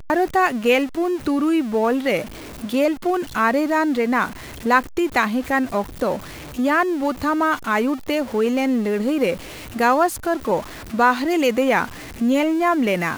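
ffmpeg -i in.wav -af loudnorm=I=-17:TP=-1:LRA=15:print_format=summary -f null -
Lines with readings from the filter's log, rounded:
Input Integrated:    -20.3 LUFS
Input True Peak:      -3.2 dBTP
Input LRA:             1.2 LU
Input Threshold:     -30.4 LUFS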